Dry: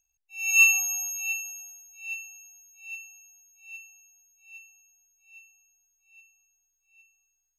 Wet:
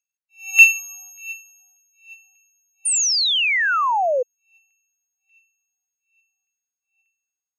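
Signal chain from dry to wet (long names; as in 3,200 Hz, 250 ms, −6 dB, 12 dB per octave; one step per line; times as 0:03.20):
auto-filter high-pass saw down 1.7 Hz 670–2,300 Hz
sound drawn into the spectrogram fall, 0:02.85–0:04.23, 480–9,400 Hz −17 dBFS
expander for the loud parts 1.5 to 1, over −37 dBFS
level +2.5 dB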